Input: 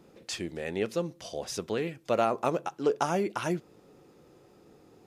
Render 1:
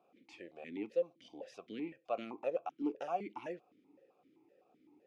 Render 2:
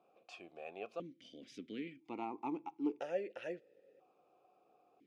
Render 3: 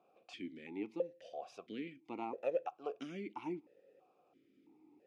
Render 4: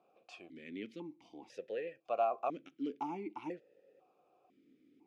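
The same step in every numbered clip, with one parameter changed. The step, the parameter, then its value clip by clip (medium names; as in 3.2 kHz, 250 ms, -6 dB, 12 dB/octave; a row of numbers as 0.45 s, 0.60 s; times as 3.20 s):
stepped vowel filter, rate: 7.8 Hz, 1 Hz, 3 Hz, 2 Hz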